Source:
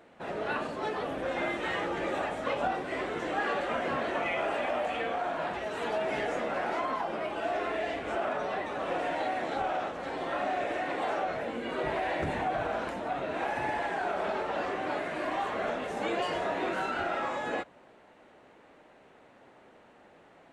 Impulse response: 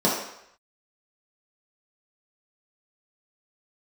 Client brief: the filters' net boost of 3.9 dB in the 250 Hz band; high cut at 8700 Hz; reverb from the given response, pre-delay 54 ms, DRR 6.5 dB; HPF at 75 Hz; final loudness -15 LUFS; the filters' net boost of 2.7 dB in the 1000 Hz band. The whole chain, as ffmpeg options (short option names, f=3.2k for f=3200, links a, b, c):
-filter_complex "[0:a]highpass=75,lowpass=8.7k,equalizer=f=250:t=o:g=5,equalizer=f=1k:t=o:g=3.5,asplit=2[a][b];[1:a]atrim=start_sample=2205,adelay=54[c];[b][c]afir=irnorm=-1:irlink=0,volume=-23dB[d];[a][d]amix=inputs=2:normalize=0,volume=13.5dB"